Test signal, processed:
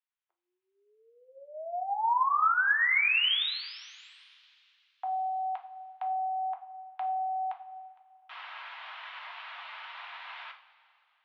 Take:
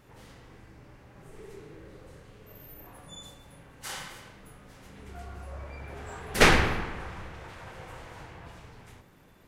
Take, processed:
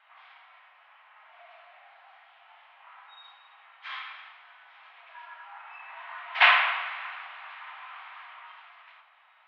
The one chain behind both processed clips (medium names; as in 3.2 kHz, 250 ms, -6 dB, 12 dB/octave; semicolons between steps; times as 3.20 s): mistuned SSB +260 Hz 580–3200 Hz; two-slope reverb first 0.39 s, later 2.9 s, from -18 dB, DRR 3 dB; trim +1.5 dB